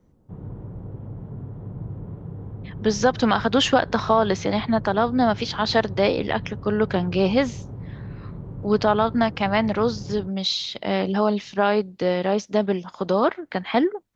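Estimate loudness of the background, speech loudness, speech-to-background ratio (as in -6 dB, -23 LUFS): -36.5 LUFS, -22.5 LUFS, 14.0 dB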